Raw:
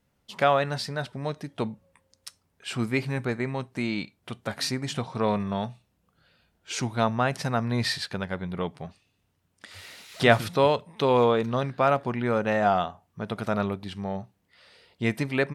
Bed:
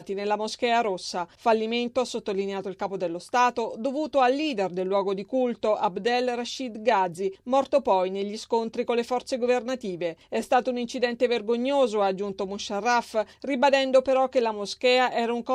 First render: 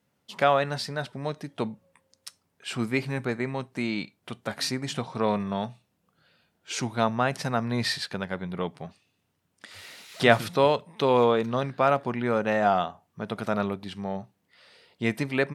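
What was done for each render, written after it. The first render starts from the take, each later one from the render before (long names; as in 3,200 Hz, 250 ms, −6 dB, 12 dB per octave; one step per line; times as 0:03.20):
high-pass filter 120 Hz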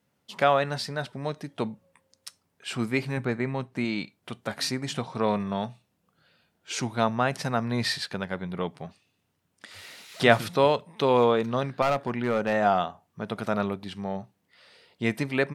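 0:03.17–0:03.85: bass and treble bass +3 dB, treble −5 dB
0:11.82–0:12.53: gain into a clipping stage and back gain 19 dB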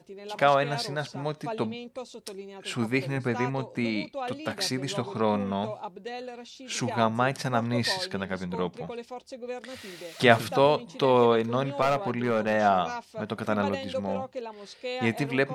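mix in bed −13 dB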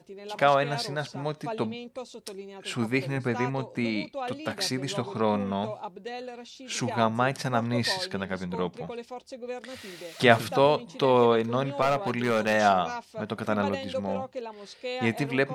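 0:12.06–0:12.73: high-shelf EQ 2,700 Hz +11 dB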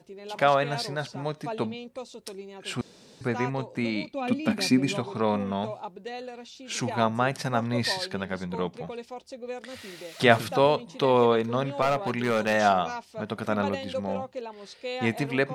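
0:02.81–0:03.21: fill with room tone
0:04.13–0:04.97: hollow resonant body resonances 230/2,400 Hz, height 15 dB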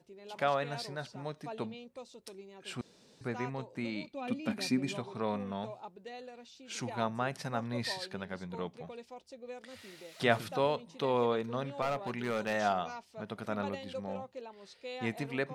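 level −9 dB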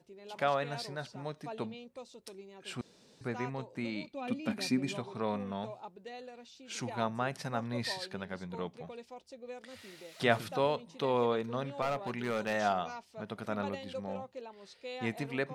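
no processing that can be heard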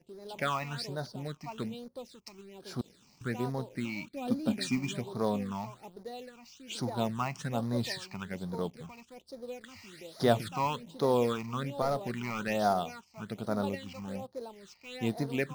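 in parallel at −4.5 dB: log-companded quantiser 4 bits
on the sum: all-pass phaser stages 8, 1.2 Hz, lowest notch 460–2,700 Hz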